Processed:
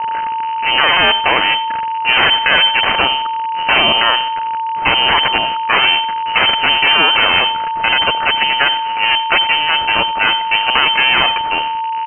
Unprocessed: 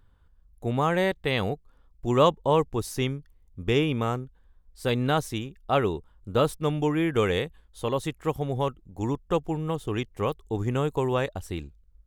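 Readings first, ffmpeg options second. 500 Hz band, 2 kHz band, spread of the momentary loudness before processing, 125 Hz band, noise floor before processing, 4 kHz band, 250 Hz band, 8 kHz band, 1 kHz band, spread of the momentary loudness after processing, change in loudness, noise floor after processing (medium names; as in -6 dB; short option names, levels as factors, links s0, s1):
+1.0 dB, +23.5 dB, 11 LU, -7.5 dB, -59 dBFS, +26.5 dB, -2.0 dB, under -35 dB, +18.0 dB, 8 LU, +15.0 dB, -20 dBFS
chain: -filter_complex "[0:a]aeval=exprs='val(0)+0.5*0.0224*sgn(val(0))':c=same,highpass=210,aeval=exprs='0.531*(cos(1*acos(clip(val(0)/0.531,-1,1)))-cos(1*PI/2))+0.237*(cos(4*acos(clip(val(0)/0.531,-1,1)))-cos(4*PI/2))+0.0531*(cos(8*acos(clip(val(0)/0.531,-1,1)))-cos(8*PI/2))':c=same,aeval=exprs='val(0)+0.0126*sin(2*PI*2200*n/s)':c=same,acrossover=split=1300[s0][s1];[s1]crystalizer=i=9.5:c=0[s2];[s0][s2]amix=inputs=2:normalize=0,aeval=exprs='(mod(1.68*val(0)+1,2)-1)/1.68':c=same,acrusher=bits=7:mix=0:aa=0.5,aecho=1:1:89|178|267:0.112|0.0381|0.013,lowpass=f=2600:t=q:w=0.5098,lowpass=f=2600:t=q:w=0.6013,lowpass=f=2600:t=q:w=0.9,lowpass=f=2600:t=q:w=2.563,afreqshift=-3100,alimiter=level_in=4.73:limit=0.891:release=50:level=0:latency=1,volume=0.891"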